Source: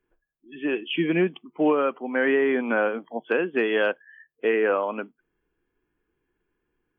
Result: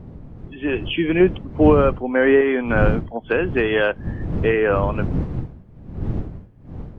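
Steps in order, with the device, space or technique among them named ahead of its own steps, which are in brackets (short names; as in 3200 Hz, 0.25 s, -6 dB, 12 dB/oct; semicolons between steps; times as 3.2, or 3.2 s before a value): 1.2–2.41 bell 400 Hz +5.5 dB 2.6 oct; smartphone video outdoors (wind noise 160 Hz -29 dBFS; AGC gain up to 4 dB; AAC 64 kbps 48000 Hz)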